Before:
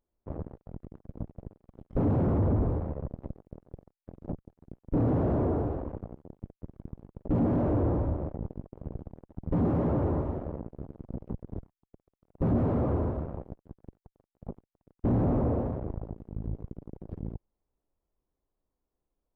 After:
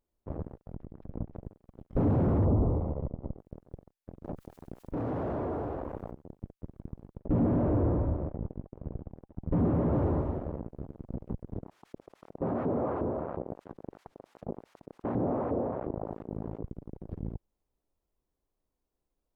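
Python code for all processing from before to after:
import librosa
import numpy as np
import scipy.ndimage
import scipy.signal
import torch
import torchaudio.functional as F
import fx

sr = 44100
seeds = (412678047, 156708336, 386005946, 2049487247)

y = fx.chain(x, sr, fx.air_absorb(metres=400.0),
    fx.pre_swell(db_per_s=140.0), at=(0.76, 1.43))
y = fx.chain(y, sr, fx.law_mismatch(coded='mu'),
    fx.savgol(points=65), at=(2.45, 3.39))
y = fx.chain(y, sr, fx.low_shelf(hz=430.0, db=-11.5),
    fx.env_flatten(amount_pct=50), at=(4.24, 6.11))
y = fx.chain(y, sr, fx.air_absorb(metres=220.0),
    fx.notch(hz=800.0, q=23.0), at=(7.19, 9.93))
y = fx.chain(y, sr, fx.filter_lfo_bandpass(shape='saw_up', hz=2.8, low_hz=350.0, high_hz=1600.0, q=0.73),
    fx.env_flatten(amount_pct=50), at=(11.58, 16.63))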